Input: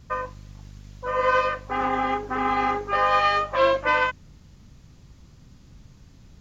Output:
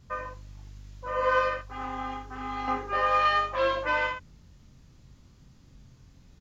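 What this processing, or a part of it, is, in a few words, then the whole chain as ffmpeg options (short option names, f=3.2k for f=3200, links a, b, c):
slapback doubling: -filter_complex "[0:a]asplit=3[a][b][c];[b]adelay=23,volume=-4dB[d];[c]adelay=81,volume=-6dB[e];[a][d][e]amix=inputs=3:normalize=0,asettb=1/sr,asplit=3[f][g][h];[f]atrim=end=1.614[i];[g]atrim=start=1.61:end=2.68,asetpts=PTS-STARTPTS,afade=t=in:d=0.004:c=qsin,afade=t=out:st=1.066:d=0.004:c=qsin,equalizer=f=250:t=o:w=1:g=-6,equalizer=f=500:t=o:w=1:g=-11,equalizer=f=1k:t=o:w=1:g=-3,equalizer=f=2k:t=o:w=1:g=-7[j];[h]atrim=start=2.676[k];[i][j]acrossfade=d=0.004:c1=hsin:c2=qsin[l];[l][k]acrossfade=d=0.004:c1=qsin:c2=hsin,volume=-7dB"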